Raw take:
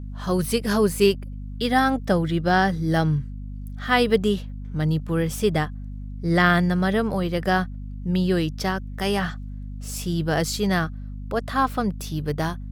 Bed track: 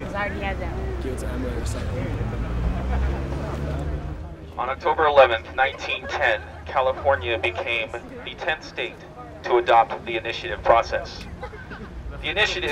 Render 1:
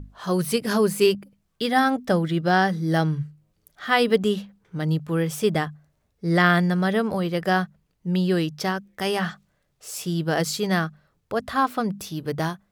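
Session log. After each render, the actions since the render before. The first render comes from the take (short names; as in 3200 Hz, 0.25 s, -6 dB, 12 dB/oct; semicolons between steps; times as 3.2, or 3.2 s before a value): notches 50/100/150/200/250 Hz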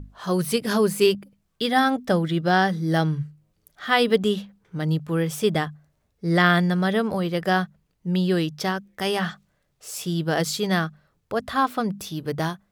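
dynamic EQ 3500 Hz, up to +5 dB, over -48 dBFS, Q 6.7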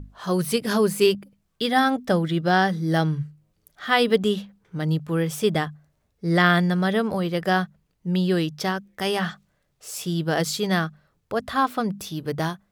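nothing audible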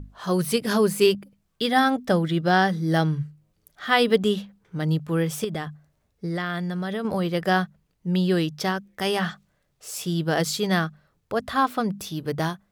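5.44–7.05 compressor, threshold -25 dBFS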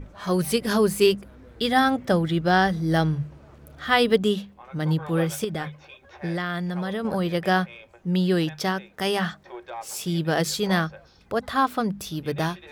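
add bed track -20.5 dB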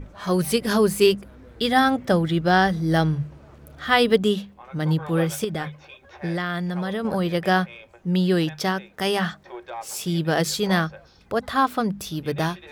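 gain +1.5 dB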